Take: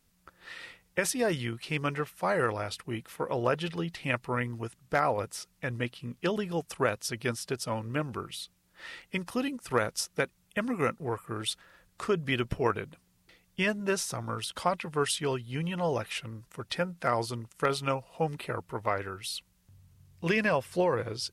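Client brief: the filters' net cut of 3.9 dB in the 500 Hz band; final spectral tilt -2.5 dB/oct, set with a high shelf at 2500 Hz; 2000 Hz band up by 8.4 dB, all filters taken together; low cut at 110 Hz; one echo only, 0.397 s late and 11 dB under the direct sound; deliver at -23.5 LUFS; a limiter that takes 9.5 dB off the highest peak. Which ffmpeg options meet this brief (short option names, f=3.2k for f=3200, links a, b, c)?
-af "highpass=110,equalizer=f=500:t=o:g=-5.5,equalizer=f=2k:t=o:g=7,highshelf=f=2.5k:g=8,alimiter=limit=-14.5dB:level=0:latency=1,aecho=1:1:397:0.282,volume=6.5dB"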